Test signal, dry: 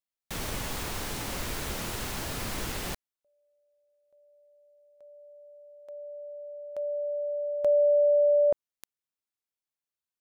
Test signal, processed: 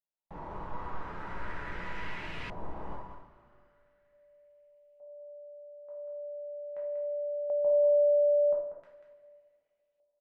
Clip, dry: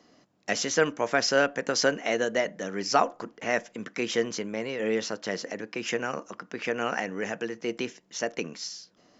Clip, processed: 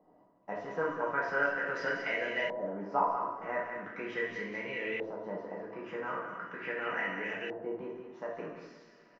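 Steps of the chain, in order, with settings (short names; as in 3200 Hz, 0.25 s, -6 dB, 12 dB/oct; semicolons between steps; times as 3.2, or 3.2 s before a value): in parallel at +1 dB: compressor, threshold -37 dBFS; on the sum: resonator 990 Hz, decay 0.25 s, mix 80%; echo 0.19 s -8.5 dB; two-slope reverb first 0.59 s, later 2.6 s, from -16 dB, DRR -4.5 dB; LFO low-pass saw up 0.4 Hz 740–2600 Hz; gain -3.5 dB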